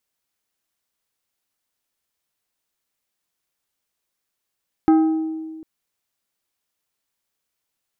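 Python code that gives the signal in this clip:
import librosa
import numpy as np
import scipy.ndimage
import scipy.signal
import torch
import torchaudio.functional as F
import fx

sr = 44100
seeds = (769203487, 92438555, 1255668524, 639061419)

y = fx.strike_glass(sr, length_s=0.75, level_db=-9.5, body='plate', hz=318.0, decay_s=1.73, tilt_db=9.5, modes=5)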